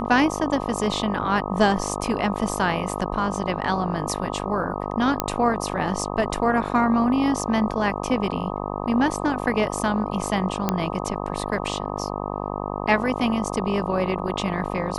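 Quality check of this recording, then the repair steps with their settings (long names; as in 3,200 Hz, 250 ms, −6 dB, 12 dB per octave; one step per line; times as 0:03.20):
mains buzz 50 Hz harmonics 25 −29 dBFS
0:05.20: click −5 dBFS
0:10.69: click −7 dBFS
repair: click removal
hum removal 50 Hz, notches 25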